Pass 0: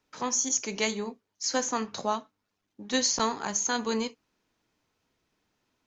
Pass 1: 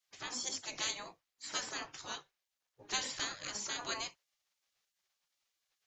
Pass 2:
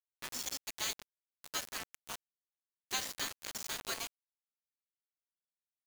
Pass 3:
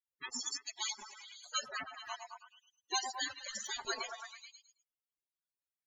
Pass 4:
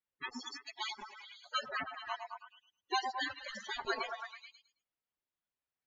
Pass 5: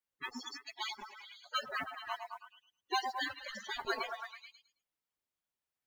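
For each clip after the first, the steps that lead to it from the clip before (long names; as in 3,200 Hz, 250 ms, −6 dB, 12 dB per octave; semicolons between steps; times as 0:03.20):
gate on every frequency bin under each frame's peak −15 dB weak
bit reduction 6 bits; level −1 dB
spectral peaks only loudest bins 16; echo through a band-pass that steps 108 ms, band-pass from 650 Hz, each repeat 0.7 octaves, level −2.5 dB; level +7.5 dB
high-frequency loss of the air 270 metres; level +5.5 dB
noise that follows the level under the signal 29 dB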